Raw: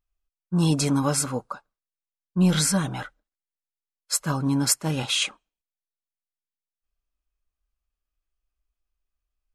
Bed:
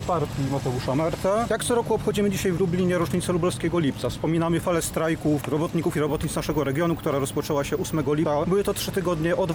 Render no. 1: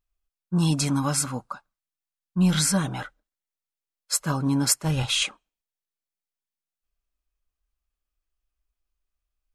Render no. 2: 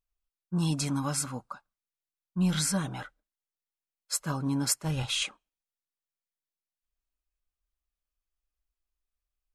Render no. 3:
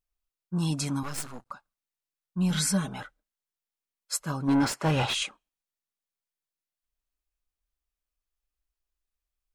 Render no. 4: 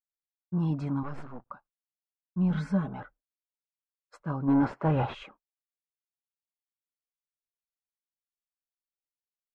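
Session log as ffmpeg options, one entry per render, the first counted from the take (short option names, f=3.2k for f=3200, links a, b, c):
-filter_complex "[0:a]asettb=1/sr,asplit=3[a][b][c];[a]atrim=end=0.584[d];[b]atrim=start=0.58:end=2.67,asetpts=PTS-STARTPTS,afade=t=in:d=0.004:c=qsin,afade=t=out:st=2.086:d=0.004:c=qsin,equalizer=f=450:w=1.8:g=-9[e];[c]atrim=start=2.666[f];[d][e]acrossfade=d=0.004:c1=hsin:c2=qsin[g];[g][f]acrossfade=d=0.004:c1=qsin:c2=hsin,asplit=3[h][i][j];[h]afade=t=out:st=4.83:d=0.02[k];[i]asubboost=boost=9:cutoff=83,afade=t=in:st=4.83:d=0.02,afade=t=out:st=5.23:d=0.02[l];[j]afade=t=in:st=5.23:d=0.02[m];[k][l][m]amix=inputs=3:normalize=0"
-af "volume=-6dB"
-filter_complex "[0:a]asettb=1/sr,asplit=3[a][b][c];[a]atrim=end=1.034[d];[b]atrim=start=1.03:end=1.51,asetpts=PTS-STARTPTS,afade=t=in:d=0.004:c=qsin,afade=t=out:st=0.476:d=0.004:c=qsin,aeval=exprs='max(val(0),0)':c=same[e];[c]atrim=start=1.506[f];[d][e]acrossfade=d=0.004:c1=hsin:c2=qsin[g];[g][f]acrossfade=d=0.004:c1=qsin:c2=hsin,asettb=1/sr,asplit=3[h][i][j];[h]atrim=end=2.504[k];[i]atrim=start=2.5:end=3,asetpts=PTS-STARTPTS,afade=t=in:d=0.004:c=qsin,afade=t=out:st=0.496:d=0.004:c=qsin,aecho=1:1:4.7:0.63,atrim=end_sample=22050[l];[j]atrim=start=2.996[m];[k][l]acrossfade=d=0.004:c1=hsin:c2=qsin[n];[n][m]acrossfade=d=0.004:c1=qsin:c2=hsin,asplit=3[o][p][q];[o]afade=t=out:st=4.47:d=0.02[r];[p]asplit=2[s][t];[t]highpass=f=720:p=1,volume=26dB,asoftclip=type=tanh:threshold=-13dB[u];[s][u]amix=inputs=2:normalize=0,lowpass=f=1.3k:p=1,volume=-6dB,afade=t=in:st=4.47:d=0.02,afade=t=out:st=5.13:d=0.02[v];[q]afade=t=in:st=5.13:d=0.02[w];[r][v][w]amix=inputs=3:normalize=0"
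-af "lowpass=1.2k,agate=range=-33dB:threshold=-49dB:ratio=3:detection=peak"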